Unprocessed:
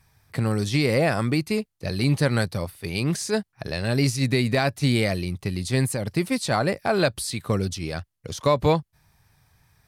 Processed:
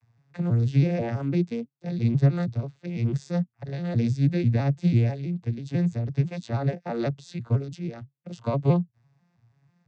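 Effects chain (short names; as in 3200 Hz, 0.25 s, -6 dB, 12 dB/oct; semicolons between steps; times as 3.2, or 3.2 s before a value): arpeggiated vocoder minor triad, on A#2, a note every 0.164 s; dynamic EQ 1000 Hz, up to -3 dB, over -40 dBFS, Q 0.71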